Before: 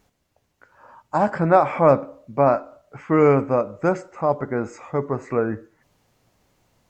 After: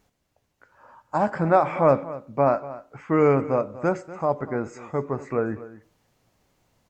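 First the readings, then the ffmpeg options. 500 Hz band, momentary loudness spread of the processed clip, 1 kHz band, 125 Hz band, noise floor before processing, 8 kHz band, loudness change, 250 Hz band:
−3.0 dB, 11 LU, −3.0 dB, −3.0 dB, −71 dBFS, can't be measured, −3.0 dB, −3.0 dB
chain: -af "aecho=1:1:241:0.15,volume=-3dB"

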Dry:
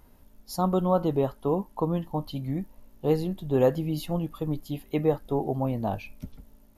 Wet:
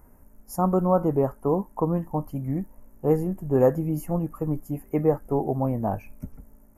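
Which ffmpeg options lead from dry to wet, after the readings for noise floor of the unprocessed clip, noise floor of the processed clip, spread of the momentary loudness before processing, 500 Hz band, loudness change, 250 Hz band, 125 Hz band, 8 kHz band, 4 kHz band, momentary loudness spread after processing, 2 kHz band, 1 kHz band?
−56 dBFS, −54 dBFS, 11 LU, +2.5 dB, +2.5 dB, +2.5 dB, +2.5 dB, can't be measured, below −15 dB, 10 LU, −2.0 dB, +2.5 dB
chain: -af "asuperstop=centerf=3700:order=4:qfactor=0.72,volume=2.5dB"

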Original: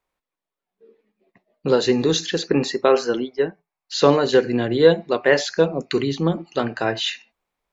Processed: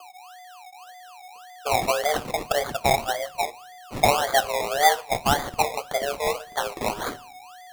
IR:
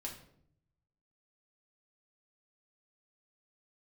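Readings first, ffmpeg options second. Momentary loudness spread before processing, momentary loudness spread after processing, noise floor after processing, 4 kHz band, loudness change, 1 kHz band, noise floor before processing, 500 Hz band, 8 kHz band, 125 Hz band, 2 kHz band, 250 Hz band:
9 LU, 24 LU, −45 dBFS, −3.0 dB, −4.0 dB, +5.5 dB, below −85 dBFS, −8.0 dB, can't be measured, −8.5 dB, −1.0 dB, −14.5 dB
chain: -filter_complex "[0:a]aeval=exprs='val(0)+0.0141*sin(2*PI*440*n/s)':channel_layout=same,afreqshift=290,acrusher=samples=23:mix=1:aa=0.000001:lfo=1:lforange=13.8:lforate=1.8,asplit=2[link_01][link_02];[1:a]atrim=start_sample=2205,adelay=26[link_03];[link_02][link_03]afir=irnorm=-1:irlink=0,volume=-18dB[link_04];[link_01][link_04]amix=inputs=2:normalize=0,volume=-5dB"

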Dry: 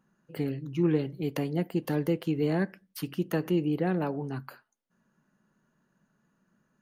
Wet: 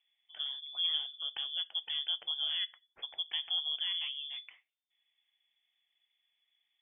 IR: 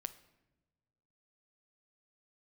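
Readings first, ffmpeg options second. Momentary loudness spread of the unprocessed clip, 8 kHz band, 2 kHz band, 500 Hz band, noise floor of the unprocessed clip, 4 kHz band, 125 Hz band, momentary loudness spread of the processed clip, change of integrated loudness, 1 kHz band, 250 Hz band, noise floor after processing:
10 LU, below −25 dB, −6.5 dB, below −30 dB, −75 dBFS, +18.0 dB, below −40 dB, 10 LU, −4.0 dB, −16.5 dB, below −40 dB, −84 dBFS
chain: -af "lowpass=frequency=3100:width_type=q:width=0.5098,lowpass=frequency=3100:width_type=q:width=0.6013,lowpass=frequency=3100:width_type=q:width=0.9,lowpass=frequency=3100:width_type=q:width=2.563,afreqshift=-3600,volume=-8dB"

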